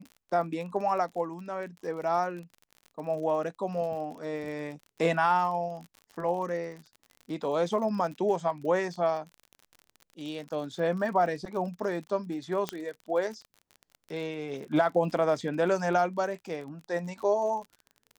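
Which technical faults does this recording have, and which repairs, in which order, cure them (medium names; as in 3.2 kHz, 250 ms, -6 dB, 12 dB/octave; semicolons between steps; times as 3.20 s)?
crackle 43 per s -38 dBFS
12.69 s: pop -15 dBFS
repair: de-click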